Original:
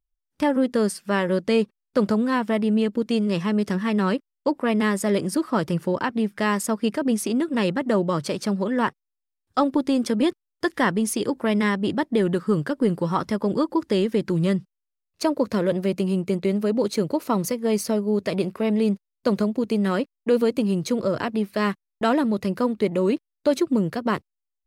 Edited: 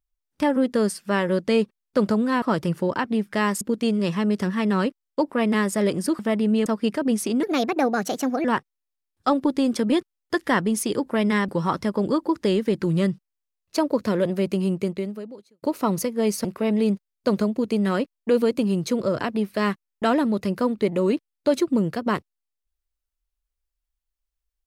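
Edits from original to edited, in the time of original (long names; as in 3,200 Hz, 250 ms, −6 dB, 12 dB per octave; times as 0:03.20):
0:02.42–0:02.89: swap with 0:05.47–0:06.66
0:07.43–0:08.75: play speed 130%
0:11.79–0:12.95: remove
0:16.25–0:17.09: fade out quadratic
0:17.91–0:18.44: remove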